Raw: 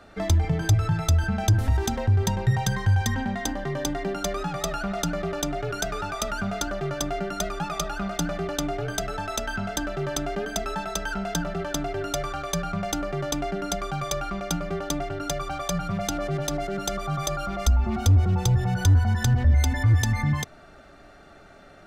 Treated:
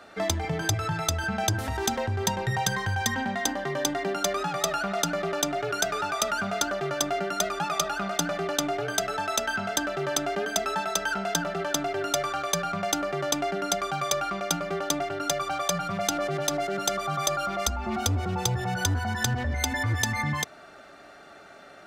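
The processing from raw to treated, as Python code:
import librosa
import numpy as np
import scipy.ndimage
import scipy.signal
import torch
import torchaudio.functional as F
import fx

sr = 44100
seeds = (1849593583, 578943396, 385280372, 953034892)

y = fx.highpass(x, sr, hz=440.0, slope=6)
y = F.gain(torch.from_numpy(y), 3.5).numpy()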